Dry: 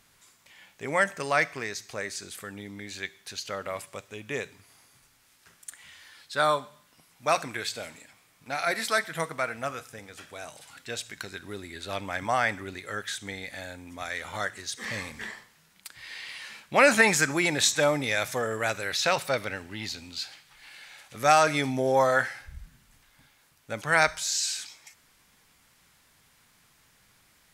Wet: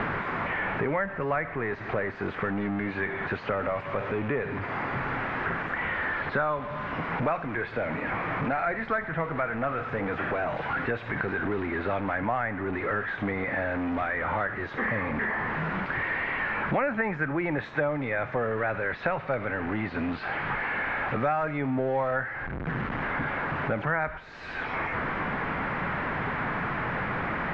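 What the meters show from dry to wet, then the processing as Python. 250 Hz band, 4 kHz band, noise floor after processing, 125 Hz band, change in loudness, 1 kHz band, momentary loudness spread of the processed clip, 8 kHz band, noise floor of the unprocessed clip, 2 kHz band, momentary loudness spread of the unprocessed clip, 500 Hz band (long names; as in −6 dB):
+5.0 dB, −13.5 dB, −38 dBFS, +6.5 dB, −2.0 dB, +0.5 dB, 3 LU, below −35 dB, −63 dBFS, +1.0 dB, 20 LU, 0.0 dB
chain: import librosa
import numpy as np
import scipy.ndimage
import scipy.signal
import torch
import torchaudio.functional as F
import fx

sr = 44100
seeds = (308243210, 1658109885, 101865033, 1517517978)

y = x + 0.5 * 10.0 ** (-27.5 / 20.0) * np.sign(x)
y = scipy.signal.sosfilt(scipy.signal.butter(4, 1900.0, 'lowpass', fs=sr, output='sos'), y)
y = fx.band_squash(y, sr, depth_pct=100)
y = F.gain(torch.from_numpy(y), -1.0).numpy()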